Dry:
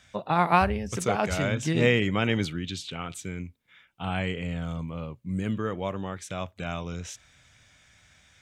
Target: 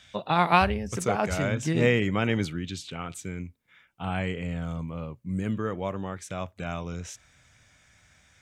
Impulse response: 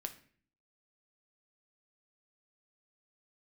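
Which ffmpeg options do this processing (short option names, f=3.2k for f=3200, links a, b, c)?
-af "asetnsamples=n=441:p=0,asendcmd='0.74 equalizer g -4.5',equalizer=f=3.4k:t=o:w=0.91:g=7.5"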